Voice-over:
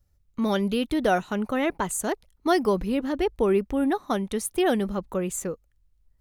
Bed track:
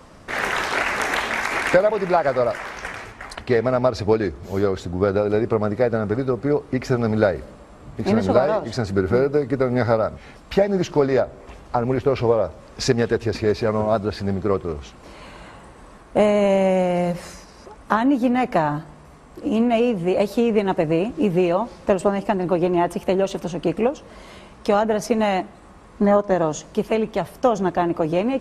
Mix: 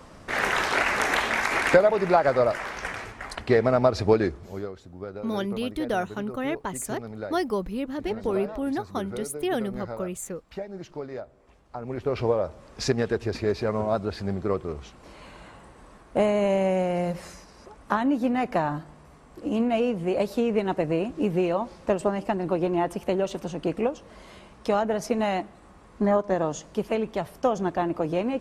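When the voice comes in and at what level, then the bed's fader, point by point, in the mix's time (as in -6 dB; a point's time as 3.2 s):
4.85 s, -4.5 dB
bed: 4.25 s -1.5 dB
4.76 s -17.5 dB
11.67 s -17.5 dB
12.18 s -5.5 dB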